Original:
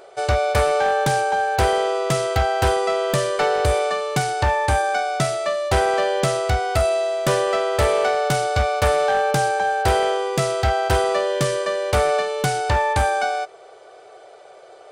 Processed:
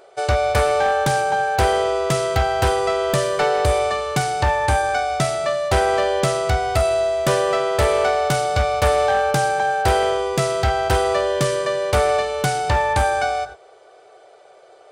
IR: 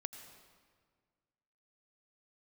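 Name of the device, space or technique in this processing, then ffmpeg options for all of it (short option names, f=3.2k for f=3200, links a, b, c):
keyed gated reverb: -filter_complex "[0:a]asplit=3[a][b][c];[1:a]atrim=start_sample=2205[d];[b][d]afir=irnorm=-1:irlink=0[e];[c]apad=whole_len=657537[f];[e][f]sidechaingate=range=-33dB:threshold=-35dB:ratio=16:detection=peak,volume=-1dB[g];[a][g]amix=inputs=2:normalize=0,volume=-3.5dB"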